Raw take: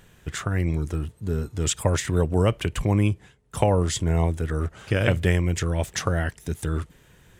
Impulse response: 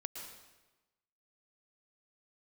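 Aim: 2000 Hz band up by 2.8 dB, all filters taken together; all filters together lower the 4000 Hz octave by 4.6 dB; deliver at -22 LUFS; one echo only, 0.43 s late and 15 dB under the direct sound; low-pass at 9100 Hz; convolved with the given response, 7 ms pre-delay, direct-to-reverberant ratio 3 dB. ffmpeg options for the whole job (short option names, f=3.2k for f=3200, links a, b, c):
-filter_complex "[0:a]lowpass=9.1k,equalizer=f=2k:t=o:g=5.5,equalizer=f=4k:t=o:g=-9,aecho=1:1:430:0.178,asplit=2[a][b];[1:a]atrim=start_sample=2205,adelay=7[c];[b][c]afir=irnorm=-1:irlink=0,volume=-1.5dB[d];[a][d]amix=inputs=2:normalize=0,volume=2dB"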